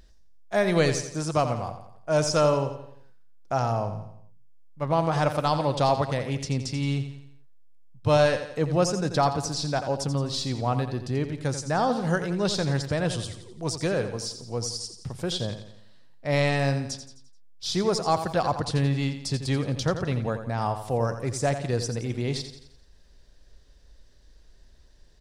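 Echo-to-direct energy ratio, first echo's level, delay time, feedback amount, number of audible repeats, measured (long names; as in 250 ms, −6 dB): −9.0 dB, −10.0 dB, 86 ms, 47%, 4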